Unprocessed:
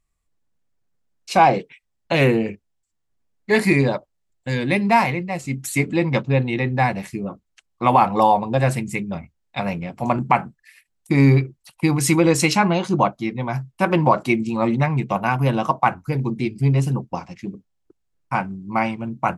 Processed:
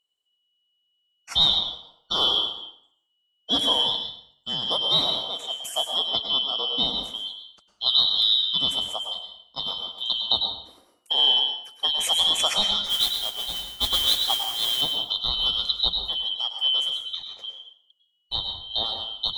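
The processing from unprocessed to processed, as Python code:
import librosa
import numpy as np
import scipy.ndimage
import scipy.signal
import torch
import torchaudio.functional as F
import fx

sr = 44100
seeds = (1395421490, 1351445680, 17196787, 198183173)

y = fx.band_shuffle(x, sr, order='2413')
y = fx.mod_noise(y, sr, seeds[0], snr_db=10, at=(12.85, 14.81))
y = fx.rev_plate(y, sr, seeds[1], rt60_s=0.64, hf_ratio=0.85, predelay_ms=90, drr_db=4.5)
y = y * 10.0 ** (-6.5 / 20.0)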